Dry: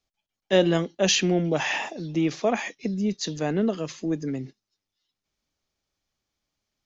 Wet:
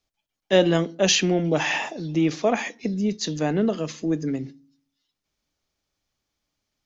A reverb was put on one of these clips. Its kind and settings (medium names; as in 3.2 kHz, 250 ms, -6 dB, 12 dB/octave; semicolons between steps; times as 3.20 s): FDN reverb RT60 0.45 s, low-frequency decay 1.55×, high-frequency decay 0.55×, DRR 17.5 dB; trim +2 dB